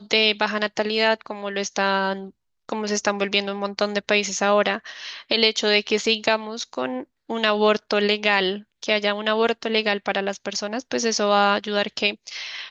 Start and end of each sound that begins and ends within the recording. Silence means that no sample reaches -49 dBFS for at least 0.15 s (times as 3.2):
2.69–7.04
7.29–8.63